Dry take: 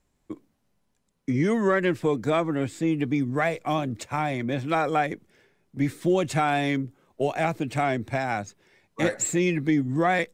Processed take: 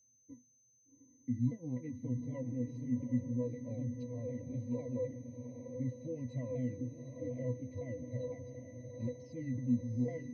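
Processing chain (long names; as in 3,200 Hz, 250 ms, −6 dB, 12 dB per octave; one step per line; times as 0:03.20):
pitch shifter swept by a sawtooth −7.5 semitones, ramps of 252 ms
de-essing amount 70%
high-shelf EQ 7,400 Hz −5 dB
in parallel at −2 dB: downward compressor, threshold −36 dBFS, peak gain reduction 16.5 dB
on the sum: pitch vibrato 7.4 Hz 34 cents
resonances in every octave B, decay 0.15 s
on a send: feedback delay with all-pass diffusion 763 ms, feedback 49%, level −7.5 dB
on the sum: steady tone 6,200 Hz −62 dBFS
Butterworth band-reject 1,300 Hz, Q 0.82
level −5.5 dB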